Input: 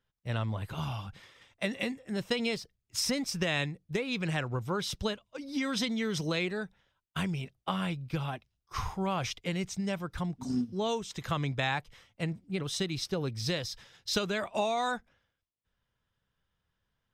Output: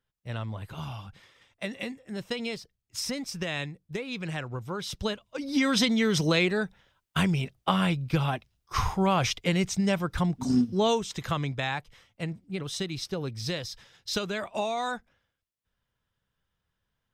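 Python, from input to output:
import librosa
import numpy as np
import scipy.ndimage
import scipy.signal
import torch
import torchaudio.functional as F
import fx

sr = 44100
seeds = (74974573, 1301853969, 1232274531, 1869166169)

y = fx.gain(x, sr, db=fx.line((4.78, -2.0), (5.45, 7.5), (10.85, 7.5), (11.59, 0.0)))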